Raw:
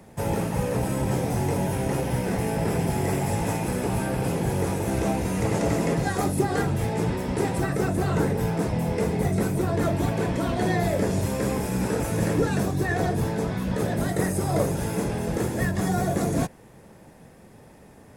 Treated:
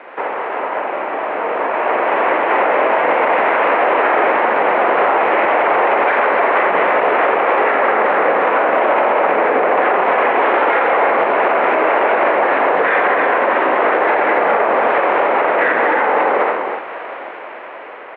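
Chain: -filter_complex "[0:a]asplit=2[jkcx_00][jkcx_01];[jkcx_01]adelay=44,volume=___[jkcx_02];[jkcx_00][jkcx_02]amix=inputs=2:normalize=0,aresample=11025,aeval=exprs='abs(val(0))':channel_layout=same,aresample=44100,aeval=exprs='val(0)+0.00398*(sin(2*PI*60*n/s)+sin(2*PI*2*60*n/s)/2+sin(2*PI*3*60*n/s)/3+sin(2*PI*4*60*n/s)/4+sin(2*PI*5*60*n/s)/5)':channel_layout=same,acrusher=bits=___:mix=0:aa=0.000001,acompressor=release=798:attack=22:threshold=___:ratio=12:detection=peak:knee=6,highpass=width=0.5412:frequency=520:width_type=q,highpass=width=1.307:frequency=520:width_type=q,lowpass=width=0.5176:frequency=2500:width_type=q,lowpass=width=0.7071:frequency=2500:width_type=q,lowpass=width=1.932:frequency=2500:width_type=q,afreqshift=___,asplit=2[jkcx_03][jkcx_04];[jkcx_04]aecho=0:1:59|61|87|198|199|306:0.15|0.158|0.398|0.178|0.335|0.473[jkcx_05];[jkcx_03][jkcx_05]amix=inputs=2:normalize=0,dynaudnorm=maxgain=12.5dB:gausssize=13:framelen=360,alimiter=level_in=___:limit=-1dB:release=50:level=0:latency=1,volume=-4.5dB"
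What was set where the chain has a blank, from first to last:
-3dB, 8, -30dB, -51, 23.5dB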